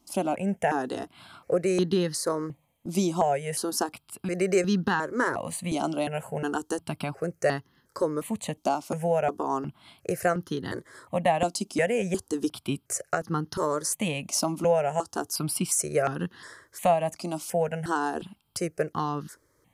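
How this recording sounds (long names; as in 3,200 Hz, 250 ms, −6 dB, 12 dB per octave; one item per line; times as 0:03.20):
notches that jump at a steady rate 2.8 Hz 470–2,300 Hz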